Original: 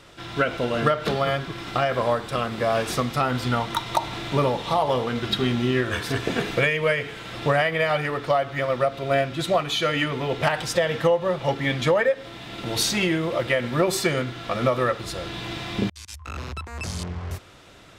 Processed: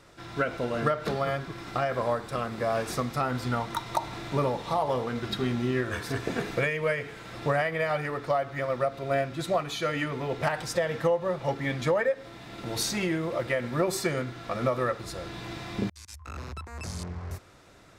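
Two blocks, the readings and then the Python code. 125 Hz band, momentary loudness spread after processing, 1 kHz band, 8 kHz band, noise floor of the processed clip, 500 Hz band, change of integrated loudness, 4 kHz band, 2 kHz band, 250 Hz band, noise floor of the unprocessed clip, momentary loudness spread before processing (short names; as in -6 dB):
-5.0 dB, 11 LU, -5.0 dB, -5.5 dB, -49 dBFS, -5.0 dB, -5.5 dB, -9.5 dB, -6.5 dB, -5.0 dB, -43 dBFS, 10 LU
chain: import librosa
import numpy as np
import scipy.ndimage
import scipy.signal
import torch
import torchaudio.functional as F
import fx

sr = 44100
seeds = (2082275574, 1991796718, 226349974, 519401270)

y = fx.peak_eq(x, sr, hz=3100.0, db=-7.5, octaves=0.6)
y = F.gain(torch.from_numpy(y), -5.0).numpy()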